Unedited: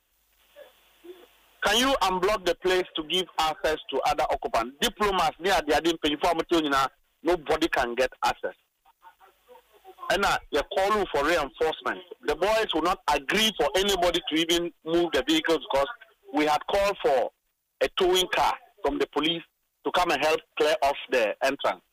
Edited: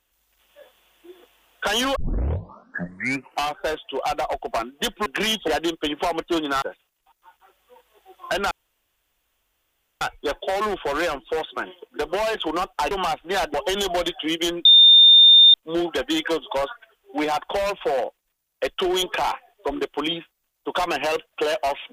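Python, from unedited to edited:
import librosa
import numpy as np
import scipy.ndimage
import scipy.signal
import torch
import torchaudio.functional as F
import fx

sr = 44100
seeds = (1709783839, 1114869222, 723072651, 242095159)

y = fx.edit(x, sr, fx.tape_start(start_s=1.96, length_s=1.6),
    fx.swap(start_s=5.06, length_s=0.63, other_s=13.2, other_length_s=0.42),
    fx.cut(start_s=6.83, length_s=1.58),
    fx.insert_room_tone(at_s=10.3, length_s=1.5),
    fx.insert_tone(at_s=14.73, length_s=0.89, hz=3620.0, db=-7.5), tone=tone)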